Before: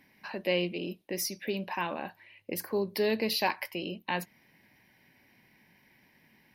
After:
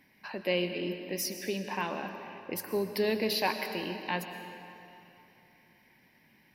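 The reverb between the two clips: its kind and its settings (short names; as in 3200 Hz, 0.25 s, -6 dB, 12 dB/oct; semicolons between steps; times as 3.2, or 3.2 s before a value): digital reverb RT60 3 s, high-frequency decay 0.8×, pre-delay 80 ms, DRR 7 dB; gain -1 dB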